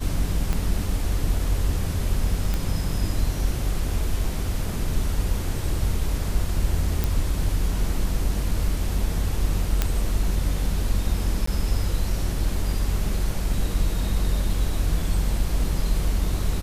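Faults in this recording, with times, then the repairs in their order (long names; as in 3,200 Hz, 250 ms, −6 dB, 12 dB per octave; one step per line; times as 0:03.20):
0:00.53: click −12 dBFS
0:02.54: click
0:07.04: click
0:09.82: click −6 dBFS
0:11.46–0:11.47: drop-out 14 ms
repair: click removal
repair the gap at 0:11.46, 14 ms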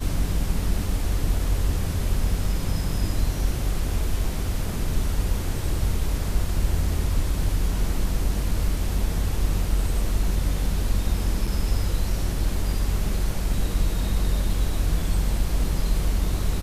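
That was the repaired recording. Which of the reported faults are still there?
0:00.53: click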